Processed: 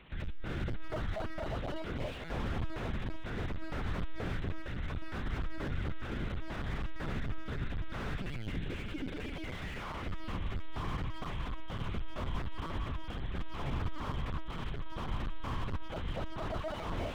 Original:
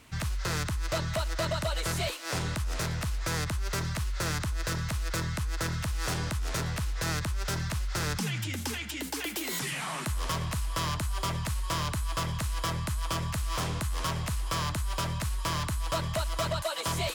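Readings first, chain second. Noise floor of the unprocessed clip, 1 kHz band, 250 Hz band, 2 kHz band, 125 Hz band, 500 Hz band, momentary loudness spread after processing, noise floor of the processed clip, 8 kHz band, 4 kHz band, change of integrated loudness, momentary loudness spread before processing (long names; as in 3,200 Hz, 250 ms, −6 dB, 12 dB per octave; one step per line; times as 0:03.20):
−36 dBFS, −8.5 dB, −3.5 dB, −8.5 dB, −7.0 dB, −6.0 dB, 3 LU, −41 dBFS, −26.0 dB, −13.0 dB, −8.0 dB, 2 LU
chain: brickwall limiter −29.5 dBFS, peak gain reduction 6 dB
rotating-speaker cabinet horn 0.7 Hz
delay that swaps between a low-pass and a high-pass 273 ms, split 1,600 Hz, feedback 87%, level −10 dB
linear-prediction vocoder at 8 kHz pitch kept
slew-rate limiting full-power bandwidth 9.6 Hz
level +2.5 dB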